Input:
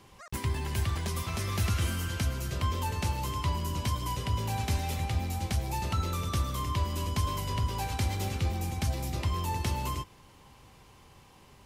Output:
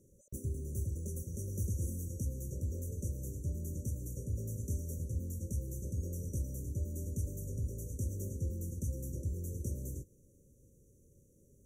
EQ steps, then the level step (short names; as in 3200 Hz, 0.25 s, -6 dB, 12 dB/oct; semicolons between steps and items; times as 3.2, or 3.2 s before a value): brick-wall FIR band-stop 590–5700 Hz; -6.5 dB